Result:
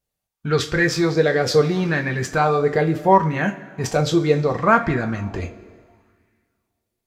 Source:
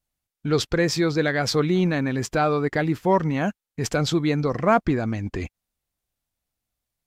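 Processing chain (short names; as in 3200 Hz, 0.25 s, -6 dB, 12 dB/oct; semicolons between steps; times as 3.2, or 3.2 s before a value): two-slope reverb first 0.25 s, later 2 s, from -18 dB, DRR 3 dB; LFO bell 0.71 Hz 440–1900 Hz +9 dB; gain -1 dB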